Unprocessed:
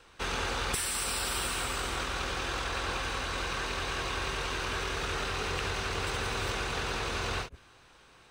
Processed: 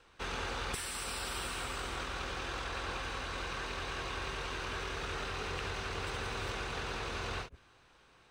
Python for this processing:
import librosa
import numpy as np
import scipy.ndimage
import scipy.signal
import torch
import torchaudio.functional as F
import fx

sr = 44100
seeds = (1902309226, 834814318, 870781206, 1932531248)

y = fx.high_shelf(x, sr, hz=6800.0, db=-6.5)
y = F.gain(torch.from_numpy(y), -5.0).numpy()